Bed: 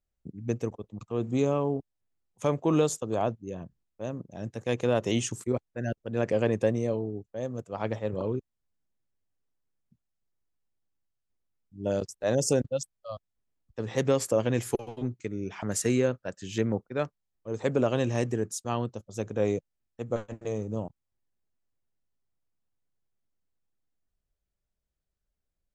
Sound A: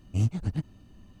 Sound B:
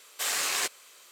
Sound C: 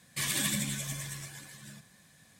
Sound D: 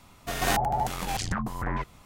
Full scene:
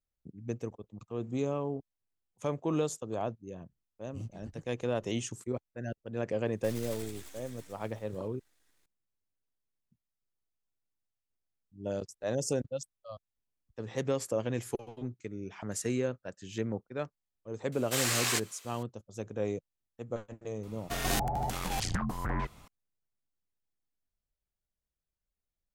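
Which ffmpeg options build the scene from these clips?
-filter_complex "[0:a]volume=0.473[s0];[3:a]aeval=exprs='abs(val(0))':c=same[s1];[4:a]acrossover=split=490|3000[s2][s3][s4];[s3]acompressor=threshold=0.0282:ratio=6:attack=3.2:release=140:knee=2.83:detection=peak[s5];[s2][s5][s4]amix=inputs=3:normalize=0[s6];[1:a]atrim=end=1.2,asetpts=PTS-STARTPTS,volume=0.141,afade=t=in:d=0.004:c=hsin,afade=t=out:st=1.196:d=0.004:c=hsin,adelay=4000[s7];[s1]atrim=end=2.39,asetpts=PTS-STARTPTS,volume=0.266,afade=t=in:d=0.004:c=hsin,afade=t=out:st=2.386:d=0.004:c=hsin,adelay=6470[s8];[2:a]atrim=end=1.11,asetpts=PTS-STARTPTS,volume=0.841,afade=t=in:d=0.004:c=hsin,afade=t=out:st=1.106:d=0.004:c=hsin,adelay=17720[s9];[s6]atrim=end=2.05,asetpts=PTS-STARTPTS,volume=0.794,afade=t=in:d=0.004:c=hsin,afade=t=out:st=2.046:d=0.004:c=hsin,adelay=20630[s10];[s0][s7][s8][s9][s10]amix=inputs=5:normalize=0"

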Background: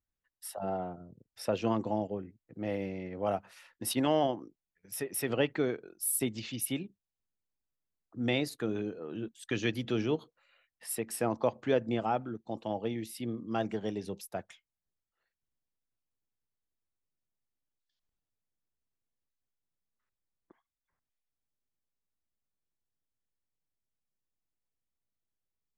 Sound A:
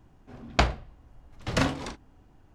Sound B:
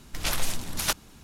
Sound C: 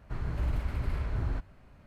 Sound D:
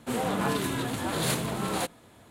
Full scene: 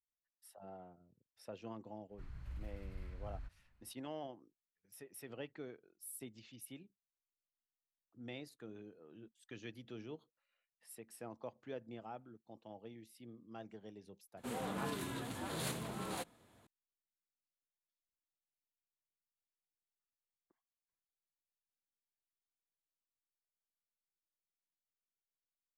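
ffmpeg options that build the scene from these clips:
-filter_complex "[0:a]volume=0.126[s0];[3:a]equalizer=f=440:t=o:w=2.4:g=-13.5,atrim=end=1.86,asetpts=PTS-STARTPTS,volume=0.188,afade=t=in:d=0.05,afade=t=out:st=1.81:d=0.05,adelay=2080[s1];[4:a]atrim=end=2.3,asetpts=PTS-STARTPTS,volume=0.237,afade=t=in:d=0.004:c=hsin,afade=t=out:st=2.296:d=0.004:c=hsin,adelay=14370[s2];[s0][s1][s2]amix=inputs=3:normalize=0"

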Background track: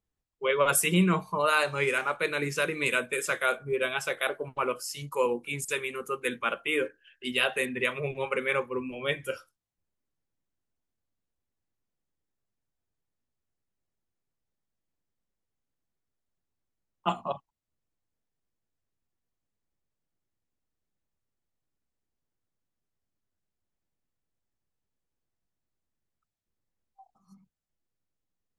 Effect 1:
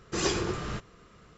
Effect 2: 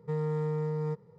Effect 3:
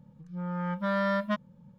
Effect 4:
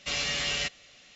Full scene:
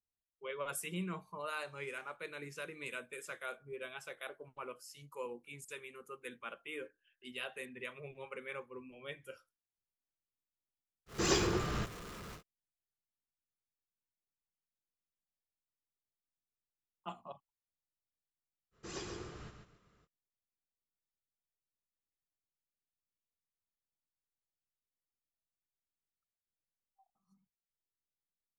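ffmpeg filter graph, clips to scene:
-filter_complex "[1:a]asplit=2[s0][s1];[0:a]volume=0.15[s2];[s0]aeval=exprs='val(0)+0.5*0.00841*sgn(val(0))':c=same[s3];[s1]aecho=1:1:139|278|417:0.473|0.123|0.032[s4];[s3]atrim=end=1.37,asetpts=PTS-STARTPTS,volume=0.708,afade=t=in:d=0.1,afade=t=out:st=1.27:d=0.1,adelay=487746S[s5];[s4]atrim=end=1.37,asetpts=PTS-STARTPTS,volume=0.15,afade=t=in:d=0.05,afade=t=out:st=1.32:d=0.05,adelay=18710[s6];[s2][s5][s6]amix=inputs=3:normalize=0"

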